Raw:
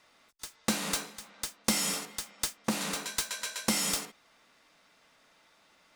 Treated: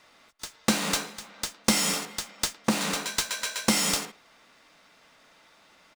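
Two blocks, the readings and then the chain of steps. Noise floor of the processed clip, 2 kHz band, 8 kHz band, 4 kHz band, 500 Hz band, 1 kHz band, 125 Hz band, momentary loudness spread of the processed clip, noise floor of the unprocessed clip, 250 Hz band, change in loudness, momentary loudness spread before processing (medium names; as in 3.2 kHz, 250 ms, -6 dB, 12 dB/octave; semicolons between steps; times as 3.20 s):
-59 dBFS, +6.0 dB, +4.0 dB, +5.5 dB, +6.0 dB, +6.0 dB, +6.0 dB, 12 LU, -65 dBFS, +6.0 dB, +5.0 dB, 12 LU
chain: median filter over 3 samples; speakerphone echo 110 ms, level -22 dB; trim +6 dB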